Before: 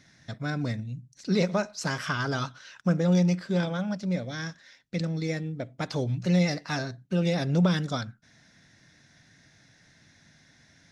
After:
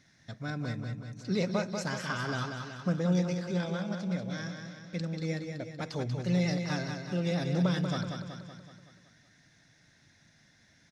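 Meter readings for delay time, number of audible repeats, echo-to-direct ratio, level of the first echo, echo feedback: 188 ms, 6, -4.5 dB, -6.0 dB, 56%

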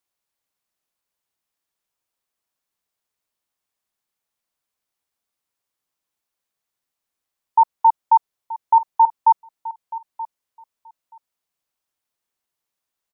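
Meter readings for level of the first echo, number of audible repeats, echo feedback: -16.5 dB, 2, 15%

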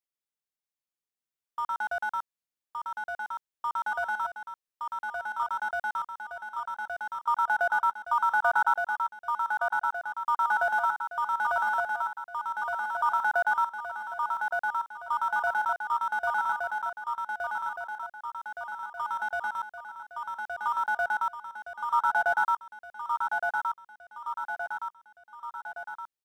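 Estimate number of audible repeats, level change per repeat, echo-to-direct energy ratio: 5, -5.0 dB, -2.5 dB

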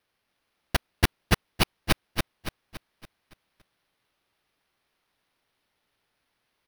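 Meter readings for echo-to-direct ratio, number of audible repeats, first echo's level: -3.0 dB, 5, -4.0 dB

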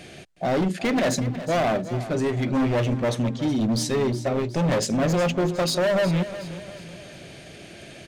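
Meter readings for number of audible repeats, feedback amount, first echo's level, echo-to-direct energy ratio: 3, 42%, -13.5 dB, -12.5 dB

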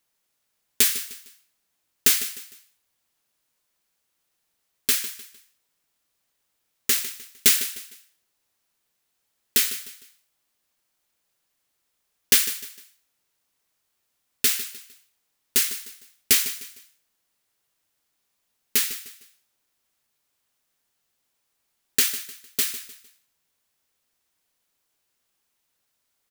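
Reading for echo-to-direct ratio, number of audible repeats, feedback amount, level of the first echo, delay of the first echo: -13.0 dB, 3, 34%, -13.5 dB, 152 ms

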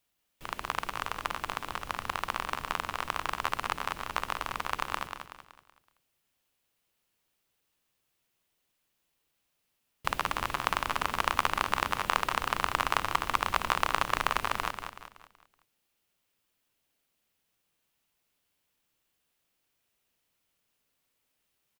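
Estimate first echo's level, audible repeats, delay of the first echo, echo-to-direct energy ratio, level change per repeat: -7.0 dB, 4, 188 ms, -6.0 dB, -7.5 dB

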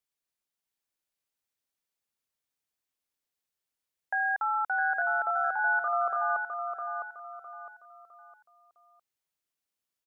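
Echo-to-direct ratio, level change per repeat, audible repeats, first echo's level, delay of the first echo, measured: -5.5 dB, -9.0 dB, 4, -6.0 dB, 658 ms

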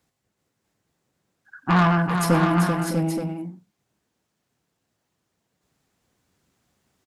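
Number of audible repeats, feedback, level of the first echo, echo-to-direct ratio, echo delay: 5, no regular repeats, -19.5 dB, -1.0 dB, 115 ms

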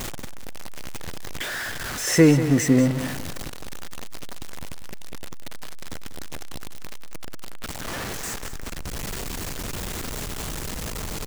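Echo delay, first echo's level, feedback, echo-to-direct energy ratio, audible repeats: 192 ms, -12.0 dB, 26%, -11.5 dB, 2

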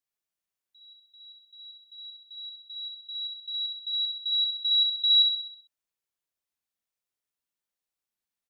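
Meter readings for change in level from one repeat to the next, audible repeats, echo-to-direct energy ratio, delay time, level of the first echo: -5.5 dB, 6, -3.0 dB, 64 ms, -4.5 dB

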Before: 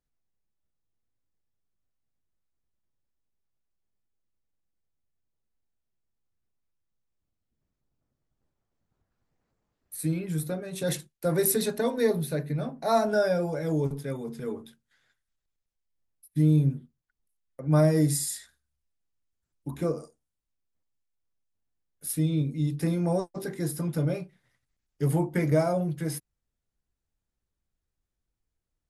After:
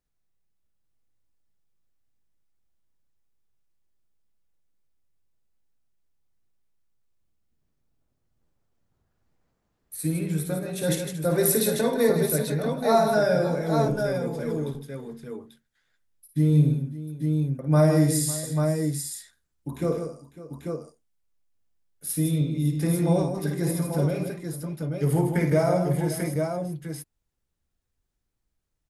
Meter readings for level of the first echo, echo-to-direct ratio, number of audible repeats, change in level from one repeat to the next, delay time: -7.0 dB, -1.0 dB, 5, no regular repeats, 54 ms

